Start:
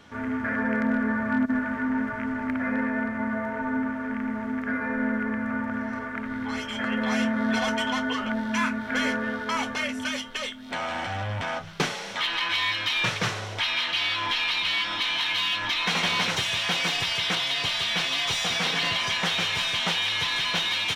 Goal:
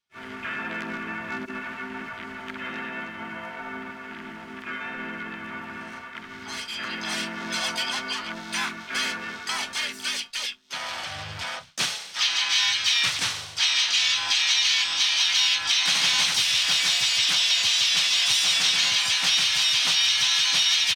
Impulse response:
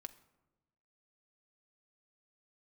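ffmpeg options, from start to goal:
-filter_complex "[0:a]agate=range=-33dB:threshold=-30dB:ratio=3:detection=peak,equalizer=frequency=250:width_type=o:width=1:gain=-7,equalizer=frequency=500:width_type=o:width=1:gain=-8,equalizer=frequency=4000:width_type=o:width=1:gain=9,acrossover=split=610|4600[link_01][link_02][link_03];[link_03]acontrast=43[link_04];[link_01][link_02][link_04]amix=inputs=3:normalize=0,lowshelf=frequency=110:gain=-10.5,asplit=3[link_05][link_06][link_07];[link_06]asetrate=35002,aresample=44100,atempo=1.25992,volume=-6dB[link_08];[link_07]asetrate=66075,aresample=44100,atempo=0.66742,volume=-4dB[link_09];[link_05][link_08][link_09]amix=inputs=3:normalize=0,volume=-4.5dB"

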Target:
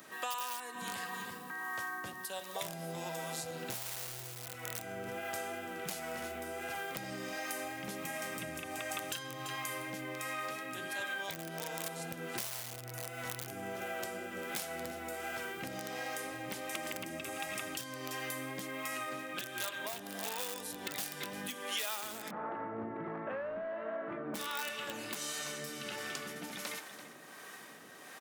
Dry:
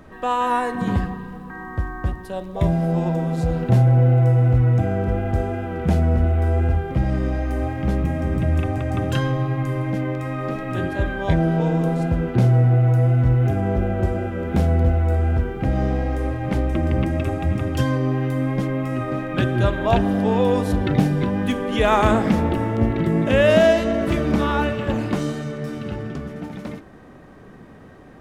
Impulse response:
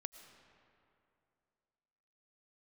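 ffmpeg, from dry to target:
-filter_complex "[0:a]highpass=frequency=110:width=0.5412,highpass=frequency=110:width=1.3066,aecho=1:1:337:0.211,acontrast=21,aeval=exprs='(mod(2.51*val(0)+1,2)-1)/2.51':channel_layout=same,aderivative,asoftclip=type=hard:threshold=-18.5dB,asplit=3[link_01][link_02][link_03];[link_01]afade=type=out:start_time=22.29:duration=0.02[link_04];[link_02]lowpass=frequency=1400:width=0.5412,lowpass=frequency=1400:width=1.3066,afade=type=in:start_time=22.29:duration=0.02,afade=type=out:start_time=24.34:duration=0.02[link_05];[link_03]afade=type=in:start_time=24.34:duration=0.02[link_06];[link_04][link_05][link_06]amix=inputs=3:normalize=0,acompressor=threshold=-46dB:ratio=6,acrossover=split=480[link_07][link_08];[link_07]aeval=exprs='val(0)*(1-0.5/2+0.5/2*cos(2*PI*1.4*n/s))':channel_layout=same[link_09];[link_08]aeval=exprs='val(0)*(1-0.5/2-0.5/2*cos(2*PI*1.4*n/s))':channel_layout=same[link_10];[link_09][link_10]amix=inputs=2:normalize=0,volume=11dB"

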